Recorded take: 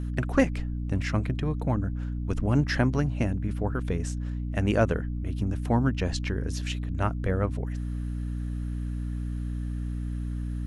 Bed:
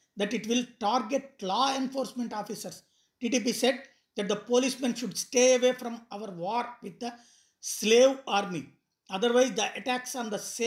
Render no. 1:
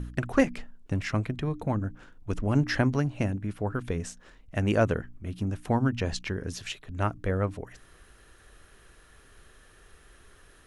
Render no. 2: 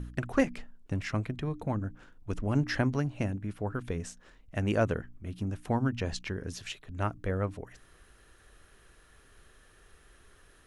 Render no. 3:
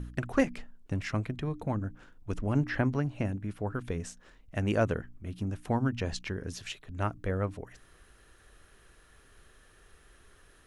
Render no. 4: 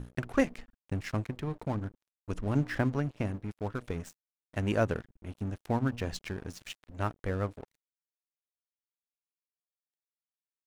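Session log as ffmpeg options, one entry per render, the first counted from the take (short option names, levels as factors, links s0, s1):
-af "bandreject=f=60:t=h:w=4,bandreject=f=120:t=h:w=4,bandreject=f=180:t=h:w=4,bandreject=f=240:t=h:w=4,bandreject=f=300:t=h:w=4"
-af "volume=0.668"
-filter_complex "[0:a]asettb=1/sr,asplit=3[s0][s1][s2];[s0]atrim=end=2.444[s3];[s1]atrim=start=2.44:end=3.25,asetpts=PTS-STARTPTS,afade=t=in:d=0.004:c=qsin,afade=t=out:st=0.806:d=0.004:c=qsin,acrossover=split=3200[s4][s5];[s5]acompressor=threshold=0.00158:ratio=4:attack=1:release=60[s6];[s4][s6]amix=inputs=2:normalize=0[s7];[s2]atrim=start=3.246[s8];[s3][s7]acrossfade=d=0.004:c1=hsin:c2=qsin[s9];[s9][s8]acrossfade=d=0.004:c1=qsin:c2=hsin"
-af "aeval=exprs='sgn(val(0))*max(abs(val(0))-0.00596,0)':c=same"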